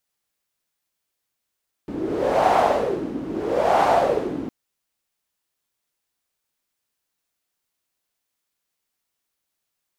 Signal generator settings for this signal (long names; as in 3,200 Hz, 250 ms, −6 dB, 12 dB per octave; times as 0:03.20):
wind from filtered noise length 2.61 s, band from 280 Hz, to 760 Hz, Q 4.3, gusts 2, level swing 12.5 dB